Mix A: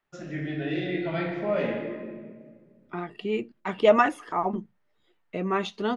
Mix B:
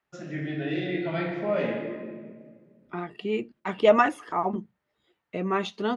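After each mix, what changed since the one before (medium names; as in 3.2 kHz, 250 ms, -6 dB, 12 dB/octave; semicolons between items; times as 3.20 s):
master: add high-pass 46 Hz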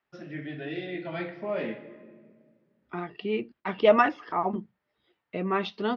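first voice: send -11.5 dB; master: add elliptic low-pass 5.4 kHz, stop band 40 dB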